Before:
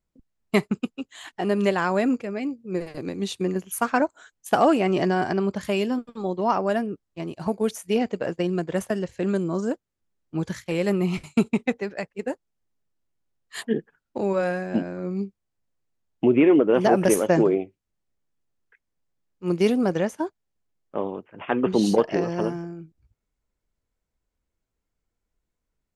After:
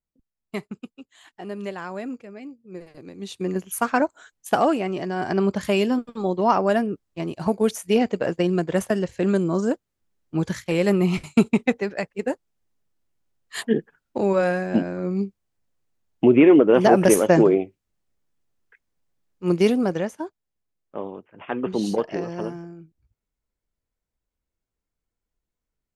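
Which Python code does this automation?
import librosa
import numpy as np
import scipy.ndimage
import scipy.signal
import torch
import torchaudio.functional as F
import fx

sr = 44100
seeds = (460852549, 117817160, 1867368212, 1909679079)

y = fx.gain(x, sr, db=fx.line((3.1, -10.0), (3.55, 1.0), (4.49, 1.0), (5.06, -7.0), (5.41, 3.5), (19.51, 3.5), (20.24, -4.0)))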